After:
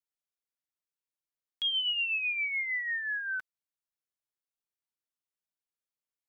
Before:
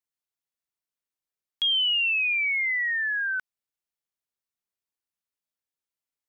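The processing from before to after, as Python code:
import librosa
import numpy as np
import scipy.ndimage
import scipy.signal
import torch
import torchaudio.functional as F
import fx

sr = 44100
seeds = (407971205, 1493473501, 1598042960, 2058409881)

y = x + 0.31 * np.pad(x, (int(6.5 * sr / 1000.0), 0))[:len(x)]
y = F.gain(torch.from_numpy(y), -7.0).numpy()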